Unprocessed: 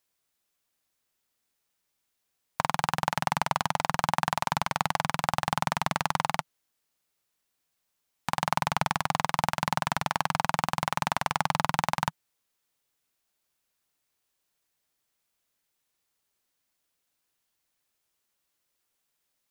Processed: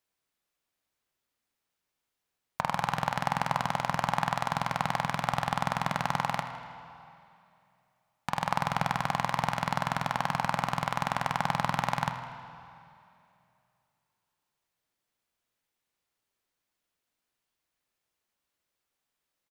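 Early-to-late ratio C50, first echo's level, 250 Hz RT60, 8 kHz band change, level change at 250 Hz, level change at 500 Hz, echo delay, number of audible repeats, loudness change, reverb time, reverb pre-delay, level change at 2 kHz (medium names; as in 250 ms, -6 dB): 7.0 dB, -14.5 dB, 2.7 s, -6.5 dB, 0.0 dB, -0.5 dB, 80 ms, 2, -1.5 dB, 2.6 s, 5 ms, -2.0 dB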